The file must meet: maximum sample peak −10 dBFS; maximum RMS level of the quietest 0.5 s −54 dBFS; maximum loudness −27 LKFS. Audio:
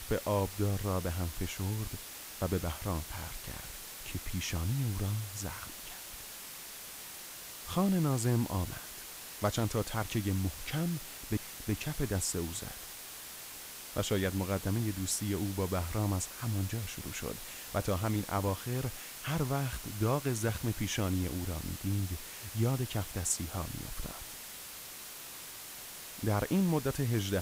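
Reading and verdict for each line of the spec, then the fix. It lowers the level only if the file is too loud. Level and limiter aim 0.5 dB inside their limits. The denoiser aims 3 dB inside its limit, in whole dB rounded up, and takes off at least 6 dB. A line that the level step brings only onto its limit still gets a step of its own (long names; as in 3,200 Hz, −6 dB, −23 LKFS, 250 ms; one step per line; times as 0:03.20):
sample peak −17.0 dBFS: in spec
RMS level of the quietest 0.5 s −46 dBFS: out of spec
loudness −35.0 LKFS: in spec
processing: broadband denoise 11 dB, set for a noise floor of −46 dBFS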